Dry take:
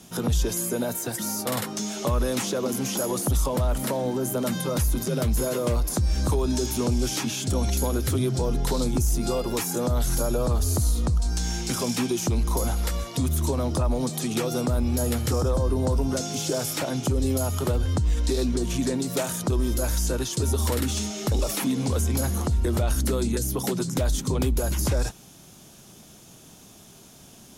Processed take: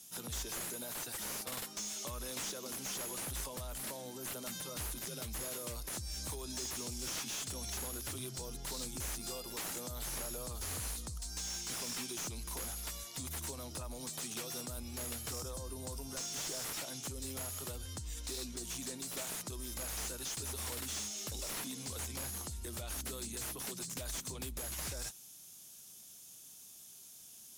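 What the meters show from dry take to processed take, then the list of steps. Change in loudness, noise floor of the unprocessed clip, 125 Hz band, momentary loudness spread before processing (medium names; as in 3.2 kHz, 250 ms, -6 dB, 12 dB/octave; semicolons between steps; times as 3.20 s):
-14.0 dB, -49 dBFS, -22.0 dB, 3 LU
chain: pre-emphasis filter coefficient 0.9; slew-rate limiter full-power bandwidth 96 Hz; trim -2 dB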